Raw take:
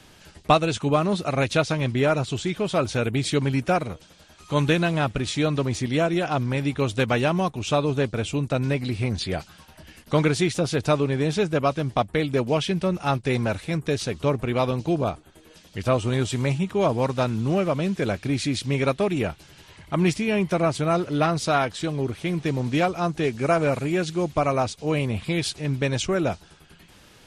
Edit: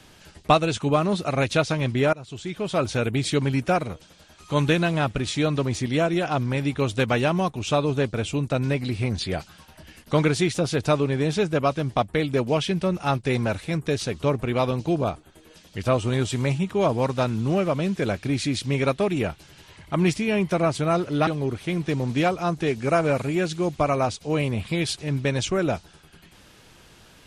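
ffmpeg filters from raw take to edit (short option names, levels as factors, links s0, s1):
-filter_complex "[0:a]asplit=3[s0][s1][s2];[s0]atrim=end=2.13,asetpts=PTS-STARTPTS,afade=t=out:st=2.126:d=0.004:c=hsin:silence=0.0891251[s3];[s1]atrim=start=2.13:end=21.272,asetpts=PTS-STARTPTS,afade=t=in:d=0.71:silence=0.0891251[s4];[s2]atrim=start=21.838[s5];[s3][s4]concat=n=2:v=0:a=1[s6];[s6][s5]acrossfade=d=0.004:c1=hsin:c2=hsin"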